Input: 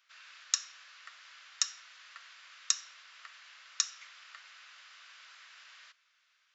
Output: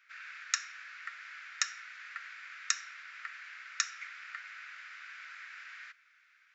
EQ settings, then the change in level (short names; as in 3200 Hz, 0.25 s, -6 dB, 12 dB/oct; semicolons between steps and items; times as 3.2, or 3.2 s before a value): band shelf 1800 Hz +13 dB 1.1 oct; -3.0 dB